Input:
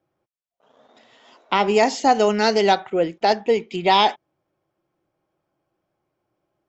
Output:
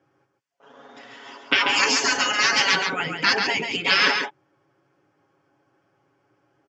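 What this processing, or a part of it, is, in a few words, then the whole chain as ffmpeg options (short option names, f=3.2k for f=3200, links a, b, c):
car door speaker: -filter_complex "[0:a]asettb=1/sr,asplit=3[a][b][c];[a]atrim=end=1.614[d];[b]atrim=start=1.61:end=2.01,asetpts=PTS-STARTPTS,afade=t=in:d=0.004:c=qsin,afade=t=out:st=0.396:d=0.004:c=qsin,bandreject=f=1.9k:w=5.3[e];[c]atrim=start=2.006[f];[d][e]acrossfade=d=0.004:c1=hsin:c2=qsin[g];[g][f]acrossfade=d=0.004:c1=qsin:c2=hsin,afftfilt=real='re*lt(hypot(re,im),0.2)':imag='im*lt(hypot(re,im),0.2)':win_size=1024:overlap=0.75,highpass=100,equalizer=f=160:t=q:w=4:g=-6,equalizer=f=640:t=q:w=4:g=-8,equalizer=f=1.6k:t=q:w=4:g=4,equalizer=f=3.9k:t=q:w=4:g=-8,lowpass=f=6.7k:w=0.5412,lowpass=f=6.7k:w=1.3066,aecho=1:1:7.2:0.57,aecho=1:1:138:0.531,volume=9dB"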